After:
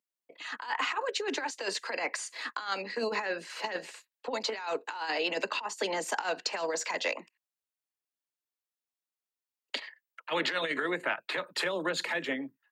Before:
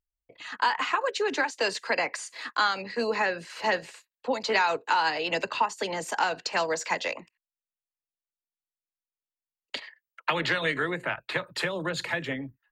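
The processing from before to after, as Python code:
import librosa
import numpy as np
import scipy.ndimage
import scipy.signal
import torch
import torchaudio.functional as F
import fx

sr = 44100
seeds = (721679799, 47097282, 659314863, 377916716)

y = scipy.signal.sosfilt(scipy.signal.butter(4, 220.0, 'highpass', fs=sr, output='sos'), x)
y = fx.over_compress(y, sr, threshold_db=-28.0, ratio=-0.5)
y = y * librosa.db_to_amplitude(-2.5)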